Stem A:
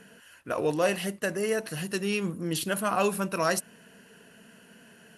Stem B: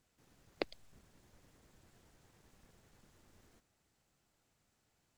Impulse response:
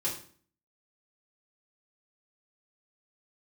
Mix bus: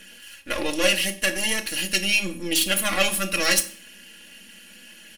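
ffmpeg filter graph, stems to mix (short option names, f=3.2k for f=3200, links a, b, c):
-filter_complex "[0:a]aeval=exprs='if(lt(val(0),0),0.251*val(0),val(0))':c=same,highshelf=f=1.7k:t=q:w=1.5:g=10.5,volume=-1dB,asplit=2[a][b];[b]volume=-9.5dB[c];[1:a]volume=-2dB[d];[2:a]atrim=start_sample=2205[e];[c][e]afir=irnorm=-1:irlink=0[f];[a][d][f]amix=inputs=3:normalize=0,aecho=1:1:3.6:0.82"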